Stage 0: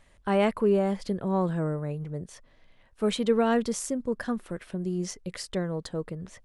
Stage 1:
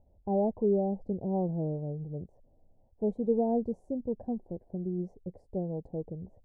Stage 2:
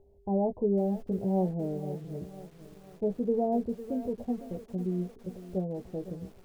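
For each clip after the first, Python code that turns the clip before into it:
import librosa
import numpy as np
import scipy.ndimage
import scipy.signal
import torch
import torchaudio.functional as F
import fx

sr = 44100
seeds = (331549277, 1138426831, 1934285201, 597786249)

y1 = scipy.signal.sosfilt(scipy.signal.ellip(4, 1.0, 40, 800.0, 'lowpass', fs=sr, output='sos'), x)
y1 = fx.peak_eq(y1, sr, hz=80.0, db=7.0, octaves=0.77)
y1 = y1 * librosa.db_to_amplitude(-3.5)
y2 = y1 + 10.0 ** (-59.0 / 20.0) * np.sin(2.0 * np.pi * 400.0 * np.arange(len(y1)) / sr)
y2 = fx.doubler(y2, sr, ms=16.0, db=-6.5)
y2 = fx.echo_crushed(y2, sr, ms=503, feedback_pct=55, bits=8, wet_db=-14.0)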